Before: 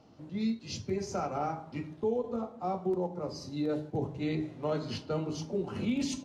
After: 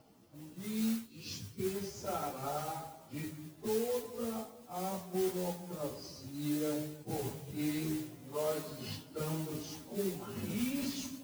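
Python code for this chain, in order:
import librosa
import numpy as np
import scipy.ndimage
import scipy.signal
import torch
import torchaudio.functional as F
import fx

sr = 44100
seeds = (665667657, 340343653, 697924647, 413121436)

y = fx.spec_erase(x, sr, start_s=0.38, length_s=0.58, low_hz=550.0, high_hz=2100.0)
y = fx.mod_noise(y, sr, seeds[0], snr_db=11)
y = fx.stretch_vocoder_free(y, sr, factor=1.8)
y = y * 10.0 ** (-2.5 / 20.0)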